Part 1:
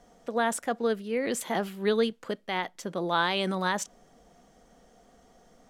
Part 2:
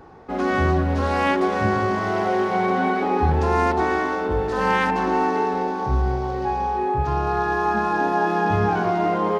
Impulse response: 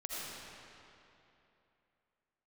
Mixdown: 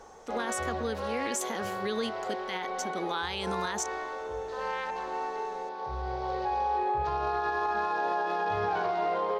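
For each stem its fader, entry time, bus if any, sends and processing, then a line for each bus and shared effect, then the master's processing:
−1.0 dB, 0.00 s, no send, graphic EQ with 15 bands 160 Hz −7 dB, 630 Hz −10 dB, 6,300 Hz +10 dB
−11.0 dB, 0.00 s, no send, graphic EQ with 10 bands 125 Hz −3 dB, 250 Hz −12 dB, 500 Hz +12 dB, 1,000 Hz +5 dB, 2,000 Hz +4 dB, 4,000 Hz +11 dB; automatic ducking −9 dB, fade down 1.25 s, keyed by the first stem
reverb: not used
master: brickwall limiter −21.5 dBFS, peak gain reduction 8 dB

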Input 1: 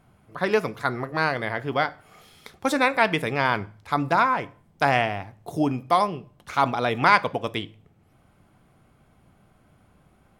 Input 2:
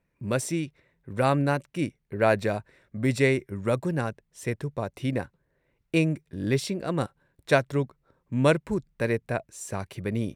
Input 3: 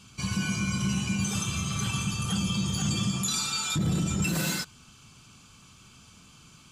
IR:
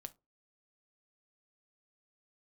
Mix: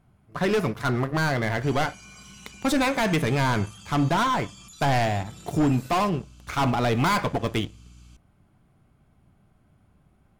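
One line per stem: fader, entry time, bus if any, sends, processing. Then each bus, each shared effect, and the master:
−3.5 dB, 0.00 s, no bus, no send, notch filter 500 Hz, Q 12; leveller curve on the samples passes 2; soft clipping −17 dBFS, distortion −9 dB
muted
−5.0 dB, 1.45 s, bus A, no send, high-pass filter 1,300 Hz 6 dB per octave; mains hum 60 Hz, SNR 15 dB
bus A: 0.0 dB, brickwall limiter −39.5 dBFS, peak gain reduction 15.5 dB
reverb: not used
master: low-shelf EQ 250 Hz +8 dB

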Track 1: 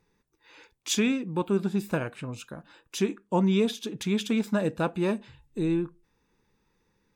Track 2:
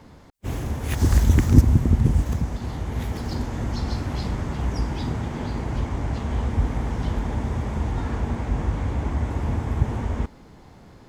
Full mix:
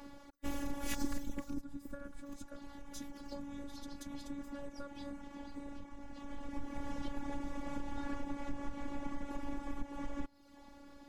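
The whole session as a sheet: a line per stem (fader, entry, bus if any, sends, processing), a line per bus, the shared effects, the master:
−6.5 dB, 0.00 s, no send, downward compressor 4 to 1, threshold −35 dBFS, peak gain reduction 13.5 dB; phaser with its sweep stopped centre 540 Hz, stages 8
0:01.05 −0.5 dB → 0:01.84 −11.5 dB → 0:06.07 −11.5 dB → 0:06.64 −2.5 dB, 0.00 s, no send, reverb reduction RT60 0.76 s; downward compressor 4 to 1, threshold −29 dBFS, peak gain reduction 18.5 dB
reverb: not used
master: phases set to zero 282 Hz

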